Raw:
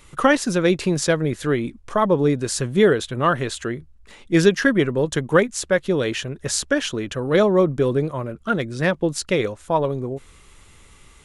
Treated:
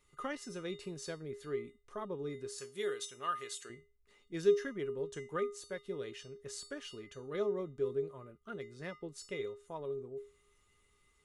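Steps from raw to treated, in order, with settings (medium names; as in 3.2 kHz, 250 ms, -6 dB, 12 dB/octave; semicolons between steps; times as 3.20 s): 2.58–3.70 s: tilt EQ +4 dB/octave; feedback comb 410 Hz, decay 0.32 s, harmonics odd, mix 90%; trim -5.5 dB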